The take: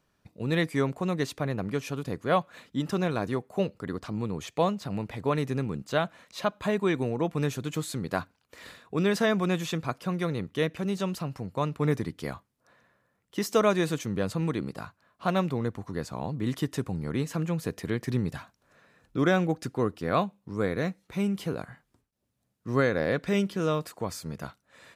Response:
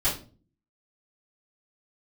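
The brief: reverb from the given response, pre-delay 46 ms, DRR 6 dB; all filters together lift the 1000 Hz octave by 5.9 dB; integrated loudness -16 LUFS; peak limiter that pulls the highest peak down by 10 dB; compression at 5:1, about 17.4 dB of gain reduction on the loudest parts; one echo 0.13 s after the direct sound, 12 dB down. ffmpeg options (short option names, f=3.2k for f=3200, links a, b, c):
-filter_complex "[0:a]equalizer=f=1k:t=o:g=7.5,acompressor=threshold=-36dB:ratio=5,alimiter=level_in=7.5dB:limit=-24dB:level=0:latency=1,volume=-7.5dB,aecho=1:1:130:0.251,asplit=2[a][b];[1:a]atrim=start_sample=2205,adelay=46[c];[b][c]afir=irnorm=-1:irlink=0,volume=-16.5dB[d];[a][d]amix=inputs=2:normalize=0,volume=25dB"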